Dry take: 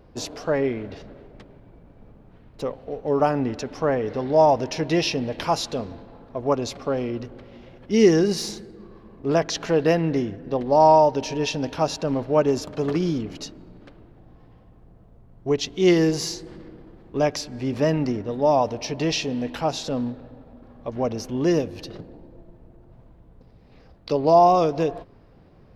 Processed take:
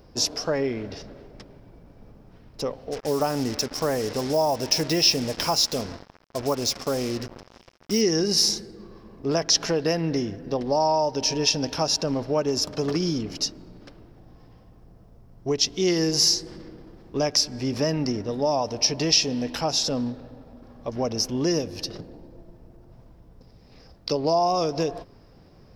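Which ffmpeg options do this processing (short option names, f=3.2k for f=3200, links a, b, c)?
-filter_complex "[0:a]asplit=3[a][b][c];[a]afade=t=out:st=2.91:d=0.02[d];[b]acrusher=bits=5:mix=0:aa=0.5,afade=t=in:st=2.91:d=0.02,afade=t=out:st=8:d=0.02[e];[c]afade=t=in:st=8:d=0.02[f];[d][e][f]amix=inputs=3:normalize=0,highshelf=f=7.6k:g=10,acompressor=threshold=-22dB:ratio=2.5,equalizer=f=5.3k:t=o:w=0.39:g=12.5"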